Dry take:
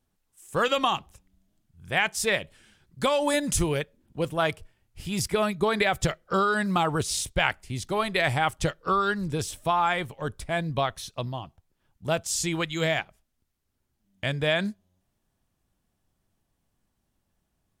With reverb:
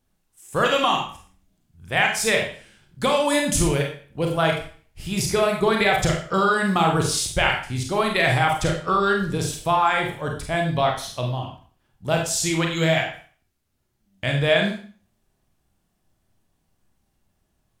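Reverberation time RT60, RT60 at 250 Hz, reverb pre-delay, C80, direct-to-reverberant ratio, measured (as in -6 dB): 0.45 s, 0.45 s, 31 ms, 9.5 dB, 0.5 dB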